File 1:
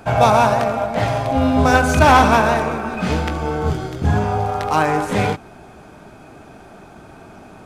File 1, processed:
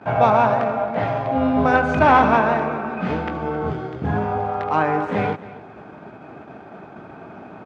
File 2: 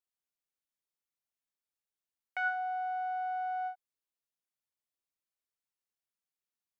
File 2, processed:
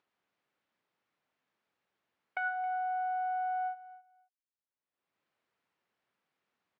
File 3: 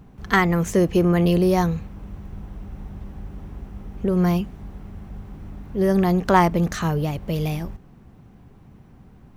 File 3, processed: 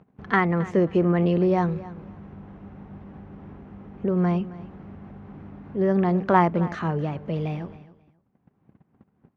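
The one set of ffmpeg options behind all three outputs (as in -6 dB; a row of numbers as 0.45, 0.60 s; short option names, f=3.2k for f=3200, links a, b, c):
-filter_complex "[0:a]agate=range=-44dB:threshold=-41dB:ratio=16:detection=peak,acompressor=mode=upward:threshold=-28dB:ratio=2.5,highpass=130,lowpass=2.2k,asplit=2[a][b];[b]aecho=0:1:269|538:0.133|0.0253[c];[a][c]amix=inputs=2:normalize=0,volume=-2dB"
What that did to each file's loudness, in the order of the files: -3.0, +0.5, -3.0 LU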